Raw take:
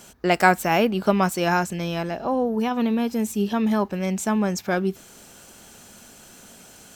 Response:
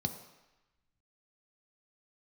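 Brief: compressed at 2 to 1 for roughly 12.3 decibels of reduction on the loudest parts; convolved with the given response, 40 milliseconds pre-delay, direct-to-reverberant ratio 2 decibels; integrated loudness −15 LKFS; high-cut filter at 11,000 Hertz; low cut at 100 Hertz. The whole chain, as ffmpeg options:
-filter_complex "[0:a]highpass=100,lowpass=11000,acompressor=threshold=-34dB:ratio=2,asplit=2[link_01][link_02];[1:a]atrim=start_sample=2205,adelay=40[link_03];[link_02][link_03]afir=irnorm=-1:irlink=0,volume=-4dB[link_04];[link_01][link_04]amix=inputs=2:normalize=0,volume=9.5dB"

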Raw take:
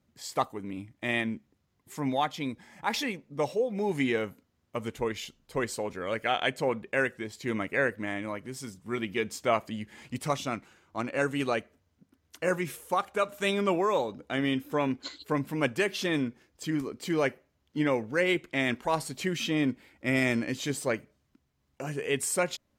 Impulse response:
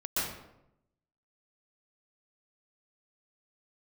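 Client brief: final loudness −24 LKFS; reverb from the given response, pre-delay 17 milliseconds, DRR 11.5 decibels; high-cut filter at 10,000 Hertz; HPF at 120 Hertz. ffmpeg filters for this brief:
-filter_complex "[0:a]highpass=120,lowpass=10000,asplit=2[link_01][link_02];[1:a]atrim=start_sample=2205,adelay=17[link_03];[link_02][link_03]afir=irnorm=-1:irlink=0,volume=-19dB[link_04];[link_01][link_04]amix=inputs=2:normalize=0,volume=6.5dB"

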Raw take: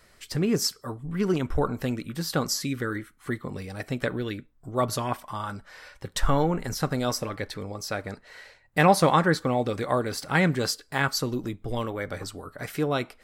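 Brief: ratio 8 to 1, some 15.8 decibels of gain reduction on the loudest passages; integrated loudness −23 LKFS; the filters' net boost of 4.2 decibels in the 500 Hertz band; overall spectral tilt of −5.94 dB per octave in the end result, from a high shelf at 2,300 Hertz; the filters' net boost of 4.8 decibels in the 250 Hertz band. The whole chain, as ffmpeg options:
ffmpeg -i in.wav -af "equalizer=frequency=250:width_type=o:gain=5.5,equalizer=frequency=500:width_type=o:gain=4,highshelf=frequency=2300:gain=-7.5,acompressor=threshold=-28dB:ratio=8,volume=11dB" out.wav

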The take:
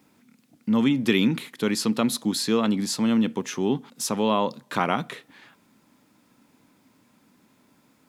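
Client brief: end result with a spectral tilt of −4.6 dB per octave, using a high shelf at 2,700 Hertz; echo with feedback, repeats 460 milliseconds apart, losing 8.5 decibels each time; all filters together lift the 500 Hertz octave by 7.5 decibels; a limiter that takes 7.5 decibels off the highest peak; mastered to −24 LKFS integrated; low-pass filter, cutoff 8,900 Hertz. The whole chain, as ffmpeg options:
ffmpeg -i in.wav -af "lowpass=8900,equalizer=frequency=500:width_type=o:gain=9,highshelf=frequency=2700:gain=3.5,alimiter=limit=-10.5dB:level=0:latency=1,aecho=1:1:460|920|1380|1840:0.376|0.143|0.0543|0.0206,volume=-1.5dB" out.wav

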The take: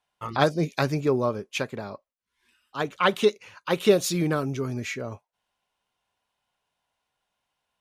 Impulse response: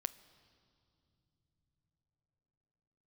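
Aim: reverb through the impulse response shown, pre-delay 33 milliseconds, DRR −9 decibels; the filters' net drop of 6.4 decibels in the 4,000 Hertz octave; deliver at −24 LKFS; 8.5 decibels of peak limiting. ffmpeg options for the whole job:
-filter_complex "[0:a]equalizer=frequency=4000:width_type=o:gain=-8.5,alimiter=limit=-14.5dB:level=0:latency=1,asplit=2[link_01][link_02];[1:a]atrim=start_sample=2205,adelay=33[link_03];[link_02][link_03]afir=irnorm=-1:irlink=0,volume=10.5dB[link_04];[link_01][link_04]amix=inputs=2:normalize=0,volume=-5.5dB"

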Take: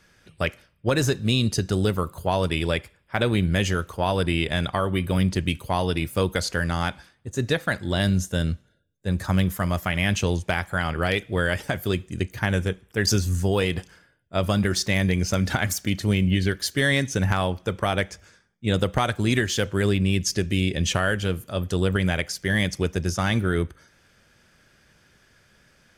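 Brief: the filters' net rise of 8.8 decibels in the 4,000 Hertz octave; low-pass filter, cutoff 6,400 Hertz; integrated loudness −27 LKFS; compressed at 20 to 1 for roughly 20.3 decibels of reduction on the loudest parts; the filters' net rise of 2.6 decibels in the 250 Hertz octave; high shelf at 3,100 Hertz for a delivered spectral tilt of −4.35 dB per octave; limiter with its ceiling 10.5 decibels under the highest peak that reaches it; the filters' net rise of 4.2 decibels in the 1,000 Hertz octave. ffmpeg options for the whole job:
ffmpeg -i in.wav -af "lowpass=6400,equalizer=frequency=250:width_type=o:gain=3.5,equalizer=frequency=1000:width_type=o:gain=4.5,highshelf=frequency=3100:gain=4,equalizer=frequency=4000:width_type=o:gain=8.5,acompressor=threshold=-31dB:ratio=20,volume=10.5dB,alimiter=limit=-14dB:level=0:latency=1" out.wav

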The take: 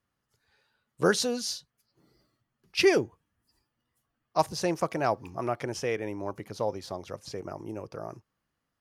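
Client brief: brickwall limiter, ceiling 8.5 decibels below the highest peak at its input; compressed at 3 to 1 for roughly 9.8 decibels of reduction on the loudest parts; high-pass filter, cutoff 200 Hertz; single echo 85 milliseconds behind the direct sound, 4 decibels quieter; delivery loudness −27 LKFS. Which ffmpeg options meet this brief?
ffmpeg -i in.wav -af "highpass=200,acompressor=threshold=-31dB:ratio=3,alimiter=level_in=1.5dB:limit=-24dB:level=0:latency=1,volume=-1.5dB,aecho=1:1:85:0.631,volume=10dB" out.wav

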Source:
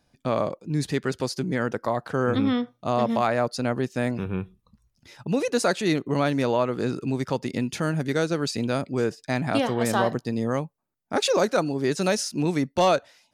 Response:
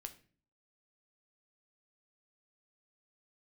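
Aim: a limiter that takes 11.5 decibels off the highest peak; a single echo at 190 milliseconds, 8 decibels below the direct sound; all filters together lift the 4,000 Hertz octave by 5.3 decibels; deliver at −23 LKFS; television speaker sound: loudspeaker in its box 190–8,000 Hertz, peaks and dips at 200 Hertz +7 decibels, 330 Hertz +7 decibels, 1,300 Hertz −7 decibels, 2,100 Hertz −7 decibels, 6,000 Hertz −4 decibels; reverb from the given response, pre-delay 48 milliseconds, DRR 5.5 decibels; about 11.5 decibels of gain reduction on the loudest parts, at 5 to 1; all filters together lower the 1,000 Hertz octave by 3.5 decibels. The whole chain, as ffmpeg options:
-filter_complex "[0:a]equalizer=frequency=1000:width_type=o:gain=-3.5,equalizer=frequency=4000:width_type=o:gain=7.5,acompressor=threshold=-29dB:ratio=5,alimiter=level_in=4dB:limit=-24dB:level=0:latency=1,volume=-4dB,aecho=1:1:190:0.398,asplit=2[link_01][link_02];[1:a]atrim=start_sample=2205,adelay=48[link_03];[link_02][link_03]afir=irnorm=-1:irlink=0,volume=-1dB[link_04];[link_01][link_04]amix=inputs=2:normalize=0,highpass=frequency=190:width=0.5412,highpass=frequency=190:width=1.3066,equalizer=frequency=200:width_type=q:width=4:gain=7,equalizer=frequency=330:width_type=q:width=4:gain=7,equalizer=frequency=1300:width_type=q:width=4:gain=-7,equalizer=frequency=2100:width_type=q:width=4:gain=-7,equalizer=frequency=6000:width_type=q:width=4:gain=-4,lowpass=frequency=8000:width=0.5412,lowpass=frequency=8000:width=1.3066,volume=12dB"

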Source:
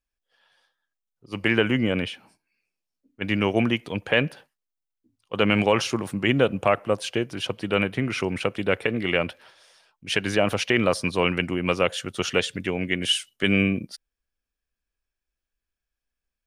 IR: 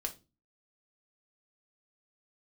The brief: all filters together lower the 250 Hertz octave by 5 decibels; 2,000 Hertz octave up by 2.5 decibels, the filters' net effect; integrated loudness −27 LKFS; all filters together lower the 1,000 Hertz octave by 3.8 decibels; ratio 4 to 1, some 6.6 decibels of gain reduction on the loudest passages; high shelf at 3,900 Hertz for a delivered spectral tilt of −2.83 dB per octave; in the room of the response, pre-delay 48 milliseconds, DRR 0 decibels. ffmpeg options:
-filter_complex "[0:a]equalizer=frequency=250:width_type=o:gain=-6.5,equalizer=frequency=1000:width_type=o:gain=-6.5,equalizer=frequency=2000:width_type=o:gain=6.5,highshelf=frequency=3900:gain=-7,acompressor=threshold=-24dB:ratio=4,asplit=2[link_01][link_02];[1:a]atrim=start_sample=2205,adelay=48[link_03];[link_02][link_03]afir=irnorm=-1:irlink=0,volume=-0.5dB[link_04];[link_01][link_04]amix=inputs=2:normalize=0,volume=-0.5dB"

